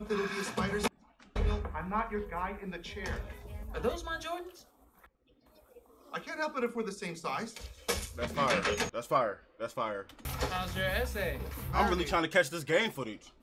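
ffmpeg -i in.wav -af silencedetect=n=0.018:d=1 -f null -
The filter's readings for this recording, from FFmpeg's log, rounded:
silence_start: 4.41
silence_end: 6.14 | silence_duration: 1.72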